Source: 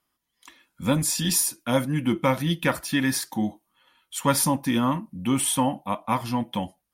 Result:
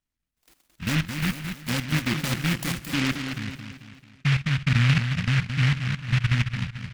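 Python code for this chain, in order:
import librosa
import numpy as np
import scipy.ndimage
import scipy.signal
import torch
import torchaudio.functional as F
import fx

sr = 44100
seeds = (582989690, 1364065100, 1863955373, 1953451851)

y = fx.filter_sweep_lowpass(x, sr, from_hz=2600.0, to_hz=140.0, start_s=2.68, end_s=3.36, q=5.4)
y = fx.level_steps(y, sr, step_db=12)
y = fx.riaa(y, sr, side='playback')
y = fx.echo_feedback(y, sr, ms=220, feedback_pct=47, wet_db=-7.0)
y = fx.noise_mod_delay(y, sr, seeds[0], noise_hz=2000.0, depth_ms=0.41)
y = y * 10.0 ** (-6.0 / 20.0)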